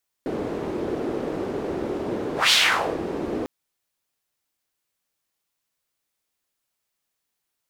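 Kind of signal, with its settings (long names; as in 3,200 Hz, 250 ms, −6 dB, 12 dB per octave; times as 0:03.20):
pass-by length 3.20 s, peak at 0:02.25, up 0.17 s, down 0.50 s, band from 370 Hz, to 3,700 Hz, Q 2.3, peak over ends 11 dB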